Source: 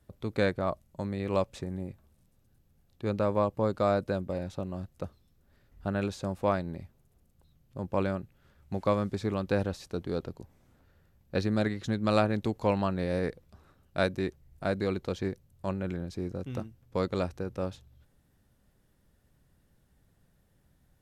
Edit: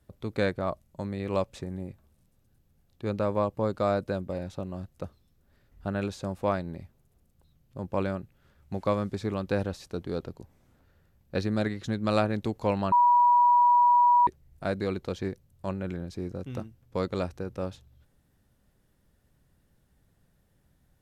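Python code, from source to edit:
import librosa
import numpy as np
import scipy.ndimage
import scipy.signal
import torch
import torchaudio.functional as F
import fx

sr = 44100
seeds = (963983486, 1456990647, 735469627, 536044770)

y = fx.edit(x, sr, fx.bleep(start_s=12.92, length_s=1.35, hz=969.0, db=-16.5), tone=tone)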